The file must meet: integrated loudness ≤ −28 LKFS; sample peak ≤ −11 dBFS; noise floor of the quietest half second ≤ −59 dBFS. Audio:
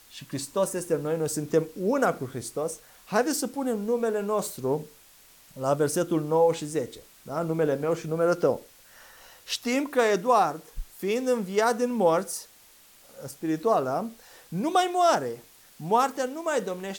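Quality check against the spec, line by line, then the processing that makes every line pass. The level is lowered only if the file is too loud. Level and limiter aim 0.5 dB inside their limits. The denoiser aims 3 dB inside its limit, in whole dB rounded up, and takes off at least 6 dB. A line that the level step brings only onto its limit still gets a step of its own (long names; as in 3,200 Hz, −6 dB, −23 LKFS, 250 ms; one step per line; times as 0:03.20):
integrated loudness −26.5 LKFS: out of spec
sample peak −9.5 dBFS: out of spec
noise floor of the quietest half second −55 dBFS: out of spec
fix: broadband denoise 6 dB, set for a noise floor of −55 dBFS
level −2 dB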